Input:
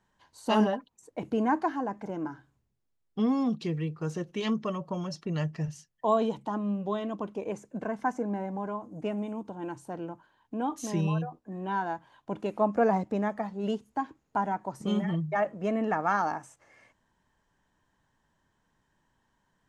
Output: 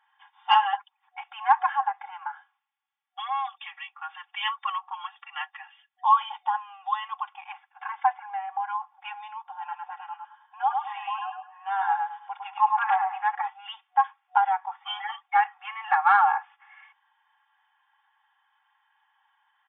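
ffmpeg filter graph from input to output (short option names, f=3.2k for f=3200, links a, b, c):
-filter_complex "[0:a]asettb=1/sr,asplit=3[a][b][c];[a]atrim=end=9.434[d];[b]atrim=start=9.43:end=13.35,asetpts=PTS-STARTPTS,afade=t=in:d=0.004:c=qsin,afade=t=out:st=3.916:d=0.004:c=qsin,aemphasis=mode=reproduction:type=75kf,aecho=1:1:106|212|318|424:0.631|0.183|0.0531|0.0154,atrim=end_sample=172872,asoftclip=type=hard:threshold=-14.5dB[e];[c]atrim=start=13.346[f];[d][e]acrossfade=d=0.004:c1=hsin:c2=qsin[g];[g][f]acrossfade=d=0.004:c1=qsin:c2=hsin,afftfilt=real='re*between(b*sr/4096,740,3600)':imag='im*between(b*sr/4096,740,3600)':win_size=4096:overlap=0.75,aecho=1:1:3.6:0.88,acontrast=63"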